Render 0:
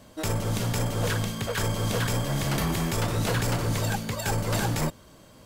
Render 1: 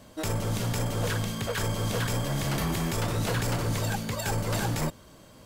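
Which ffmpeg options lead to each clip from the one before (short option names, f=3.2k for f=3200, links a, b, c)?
-af "alimiter=limit=-20.5dB:level=0:latency=1"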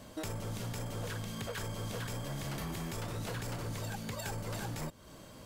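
-af "acompressor=threshold=-38dB:ratio=4"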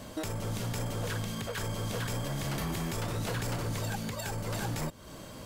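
-af "alimiter=level_in=8dB:limit=-24dB:level=0:latency=1:release=401,volume=-8dB,volume=6.5dB"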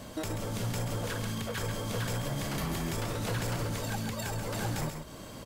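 -af "aecho=1:1:135:0.447"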